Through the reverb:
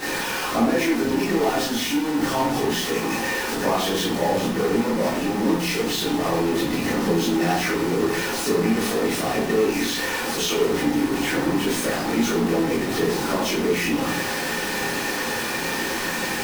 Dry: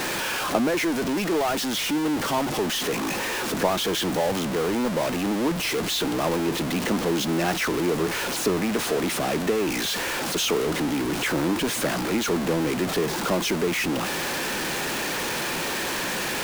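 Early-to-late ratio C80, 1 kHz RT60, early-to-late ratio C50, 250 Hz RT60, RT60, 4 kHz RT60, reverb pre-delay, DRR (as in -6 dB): 7.5 dB, 0.50 s, 2.5 dB, 0.70 s, 0.60 s, 0.40 s, 15 ms, -9.5 dB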